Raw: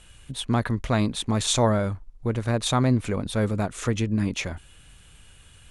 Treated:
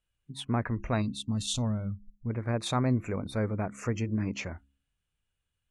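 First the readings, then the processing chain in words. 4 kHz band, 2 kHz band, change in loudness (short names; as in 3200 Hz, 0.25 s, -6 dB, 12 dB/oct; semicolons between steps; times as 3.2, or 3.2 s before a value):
-8.0 dB, -7.0 dB, -6.5 dB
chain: spectral gain 1.02–2.3, 290–2600 Hz -13 dB; spectral noise reduction 26 dB; high shelf 4700 Hz -5.5 dB; de-hum 68.19 Hz, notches 5; gain -5.5 dB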